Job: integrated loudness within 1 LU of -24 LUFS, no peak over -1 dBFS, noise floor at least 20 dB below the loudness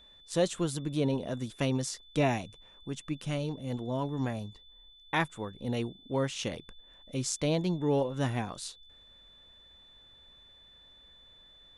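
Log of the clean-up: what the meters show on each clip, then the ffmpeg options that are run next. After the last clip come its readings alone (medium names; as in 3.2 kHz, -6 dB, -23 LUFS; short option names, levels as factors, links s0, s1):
steady tone 3.5 kHz; tone level -55 dBFS; loudness -32.5 LUFS; peak level -14.0 dBFS; loudness target -24.0 LUFS
-> -af "bandreject=f=3500:w=30"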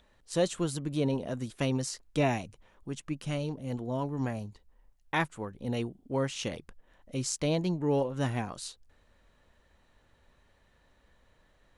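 steady tone not found; loudness -32.5 LUFS; peak level -13.5 dBFS; loudness target -24.0 LUFS
-> -af "volume=2.66"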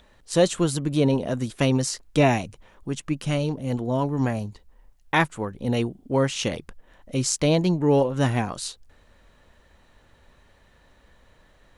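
loudness -24.0 LUFS; peak level -5.0 dBFS; noise floor -58 dBFS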